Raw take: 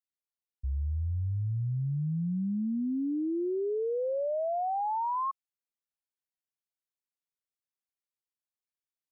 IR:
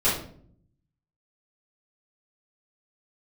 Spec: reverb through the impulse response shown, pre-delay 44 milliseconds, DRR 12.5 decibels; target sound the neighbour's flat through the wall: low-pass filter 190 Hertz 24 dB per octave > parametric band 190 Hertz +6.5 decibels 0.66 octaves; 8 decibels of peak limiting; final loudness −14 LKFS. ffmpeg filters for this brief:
-filter_complex "[0:a]alimiter=level_in=11.5dB:limit=-24dB:level=0:latency=1,volume=-11.5dB,asplit=2[link_01][link_02];[1:a]atrim=start_sample=2205,adelay=44[link_03];[link_02][link_03]afir=irnorm=-1:irlink=0,volume=-26.5dB[link_04];[link_01][link_04]amix=inputs=2:normalize=0,lowpass=frequency=190:width=0.5412,lowpass=frequency=190:width=1.3066,equalizer=frequency=190:width_type=o:width=0.66:gain=6.5,volume=25dB"

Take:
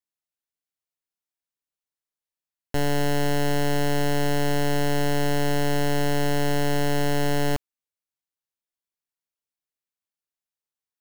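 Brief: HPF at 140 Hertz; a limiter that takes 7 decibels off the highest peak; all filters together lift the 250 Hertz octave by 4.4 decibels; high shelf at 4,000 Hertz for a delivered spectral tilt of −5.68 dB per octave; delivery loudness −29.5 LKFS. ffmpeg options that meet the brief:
ffmpeg -i in.wav -af "highpass=140,equalizer=frequency=250:width_type=o:gain=6,highshelf=frequency=4000:gain=-7.5,volume=1dB,alimiter=limit=-21.5dB:level=0:latency=1" out.wav

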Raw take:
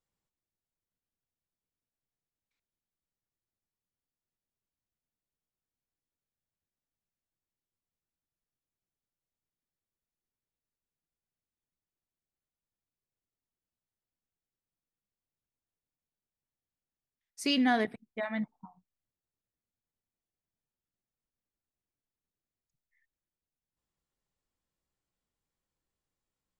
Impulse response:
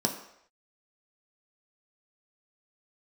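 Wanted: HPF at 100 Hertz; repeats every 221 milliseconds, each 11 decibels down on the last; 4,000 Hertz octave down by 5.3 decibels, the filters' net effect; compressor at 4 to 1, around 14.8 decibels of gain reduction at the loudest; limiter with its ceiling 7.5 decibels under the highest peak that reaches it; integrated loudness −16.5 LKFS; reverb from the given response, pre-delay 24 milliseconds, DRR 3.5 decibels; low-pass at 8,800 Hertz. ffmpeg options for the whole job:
-filter_complex "[0:a]highpass=100,lowpass=8800,equalizer=frequency=4000:width_type=o:gain=-8.5,acompressor=threshold=-42dB:ratio=4,alimiter=level_in=12.5dB:limit=-24dB:level=0:latency=1,volume=-12.5dB,aecho=1:1:221|442|663:0.282|0.0789|0.0221,asplit=2[link_01][link_02];[1:a]atrim=start_sample=2205,adelay=24[link_03];[link_02][link_03]afir=irnorm=-1:irlink=0,volume=-11.5dB[link_04];[link_01][link_04]amix=inputs=2:normalize=0,volume=25dB"

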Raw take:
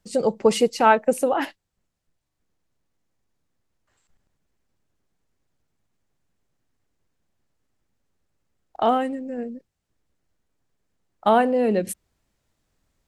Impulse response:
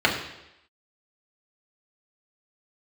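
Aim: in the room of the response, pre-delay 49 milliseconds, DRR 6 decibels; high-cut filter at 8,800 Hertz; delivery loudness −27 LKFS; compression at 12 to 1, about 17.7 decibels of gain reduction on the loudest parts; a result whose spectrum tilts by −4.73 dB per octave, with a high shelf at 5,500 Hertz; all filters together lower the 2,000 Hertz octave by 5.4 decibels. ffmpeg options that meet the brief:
-filter_complex "[0:a]lowpass=8800,equalizer=frequency=2000:width_type=o:gain=-7,highshelf=frequency=5500:gain=-8.5,acompressor=threshold=-31dB:ratio=12,asplit=2[link_01][link_02];[1:a]atrim=start_sample=2205,adelay=49[link_03];[link_02][link_03]afir=irnorm=-1:irlink=0,volume=-24.5dB[link_04];[link_01][link_04]amix=inputs=2:normalize=0,volume=9dB"

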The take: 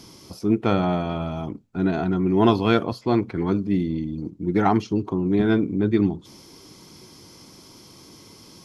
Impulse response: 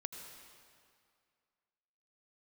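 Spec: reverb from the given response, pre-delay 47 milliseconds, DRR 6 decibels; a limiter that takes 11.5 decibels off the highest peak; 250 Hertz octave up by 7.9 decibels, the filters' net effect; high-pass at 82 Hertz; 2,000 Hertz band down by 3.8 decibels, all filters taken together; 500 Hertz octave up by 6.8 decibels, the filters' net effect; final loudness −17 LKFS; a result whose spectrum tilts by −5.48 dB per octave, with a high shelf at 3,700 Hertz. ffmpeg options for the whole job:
-filter_complex "[0:a]highpass=82,equalizer=frequency=250:width_type=o:gain=9,equalizer=frequency=500:width_type=o:gain=5.5,equalizer=frequency=2000:width_type=o:gain=-7,highshelf=frequency=3700:gain=3,alimiter=limit=-11dB:level=0:latency=1,asplit=2[link_01][link_02];[1:a]atrim=start_sample=2205,adelay=47[link_03];[link_02][link_03]afir=irnorm=-1:irlink=0,volume=-4dB[link_04];[link_01][link_04]amix=inputs=2:normalize=0,volume=3dB"

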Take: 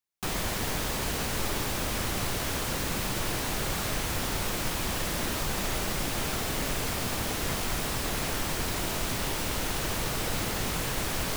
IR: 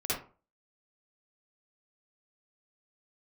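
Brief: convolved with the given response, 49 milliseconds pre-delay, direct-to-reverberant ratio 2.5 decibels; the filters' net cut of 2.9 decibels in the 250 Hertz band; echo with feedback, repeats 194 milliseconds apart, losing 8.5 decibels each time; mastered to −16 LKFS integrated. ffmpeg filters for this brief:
-filter_complex "[0:a]equalizer=frequency=250:width_type=o:gain=-4,aecho=1:1:194|388|582|776:0.376|0.143|0.0543|0.0206,asplit=2[link_01][link_02];[1:a]atrim=start_sample=2205,adelay=49[link_03];[link_02][link_03]afir=irnorm=-1:irlink=0,volume=-9dB[link_04];[link_01][link_04]amix=inputs=2:normalize=0,volume=12dB"

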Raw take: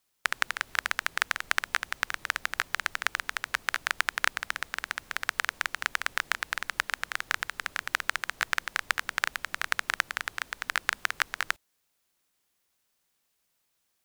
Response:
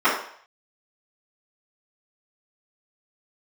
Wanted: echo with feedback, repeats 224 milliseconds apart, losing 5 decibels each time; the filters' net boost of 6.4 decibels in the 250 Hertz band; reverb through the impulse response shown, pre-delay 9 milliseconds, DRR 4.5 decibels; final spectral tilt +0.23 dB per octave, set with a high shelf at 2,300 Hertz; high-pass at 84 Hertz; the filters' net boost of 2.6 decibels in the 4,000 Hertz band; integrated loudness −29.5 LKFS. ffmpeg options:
-filter_complex "[0:a]highpass=84,equalizer=frequency=250:width_type=o:gain=8.5,highshelf=frequency=2300:gain=-3.5,equalizer=frequency=4000:width_type=o:gain=6.5,aecho=1:1:224|448|672|896|1120|1344|1568:0.562|0.315|0.176|0.0988|0.0553|0.031|0.0173,asplit=2[link_01][link_02];[1:a]atrim=start_sample=2205,adelay=9[link_03];[link_02][link_03]afir=irnorm=-1:irlink=0,volume=-25.5dB[link_04];[link_01][link_04]amix=inputs=2:normalize=0,volume=-1.5dB"

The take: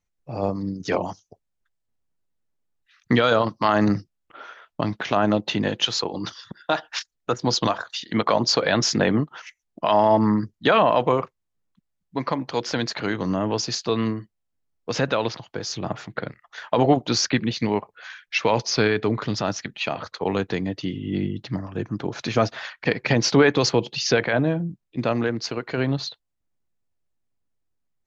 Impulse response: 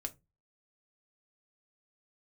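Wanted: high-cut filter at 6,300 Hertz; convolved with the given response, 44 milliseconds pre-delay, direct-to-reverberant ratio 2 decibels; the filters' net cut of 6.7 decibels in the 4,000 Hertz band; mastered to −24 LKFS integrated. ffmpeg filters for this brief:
-filter_complex "[0:a]lowpass=6300,equalizer=frequency=4000:width_type=o:gain=-8,asplit=2[link_01][link_02];[1:a]atrim=start_sample=2205,adelay=44[link_03];[link_02][link_03]afir=irnorm=-1:irlink=0,volume=-0.5dB[link_04];[link_01][link_04]amix=inputs=2:normalize=0,volume=-2dB"

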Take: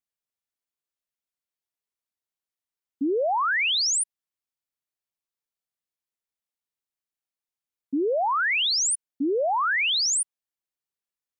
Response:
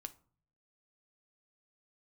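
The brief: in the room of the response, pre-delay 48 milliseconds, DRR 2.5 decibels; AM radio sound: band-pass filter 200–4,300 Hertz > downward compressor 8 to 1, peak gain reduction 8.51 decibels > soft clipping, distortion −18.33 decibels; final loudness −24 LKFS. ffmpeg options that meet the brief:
-filter_complex "[0:a]asplit=2[link_01][link_02];[1:a]atrim=start_sample=2205,adelay=48[link_03];[link_02][link_03]afir=irnorm=-1:irlink=0,volume=2dB[link_04];[link_01][link_04]amix=inputs=2:normalize=0,highpass=200,lowpass=4300,acompressor=threshold=-27dB:ratio=8,asoftclip=threshold=-26dB,volume=7.5dB"

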